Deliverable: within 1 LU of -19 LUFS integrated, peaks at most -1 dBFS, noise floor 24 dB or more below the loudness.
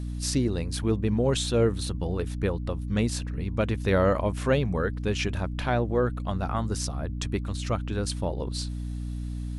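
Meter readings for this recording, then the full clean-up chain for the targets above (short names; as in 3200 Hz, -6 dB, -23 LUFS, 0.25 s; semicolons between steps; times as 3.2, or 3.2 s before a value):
hum 60 Hz; harmonics up to 300 Hz; hum level -30 dBFS; loudness -28.0 LUFS; peak -11.5 dBFS; loudness target -19.0 LUFS
-> de-hum 60 Hz, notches 5; gain +9 dB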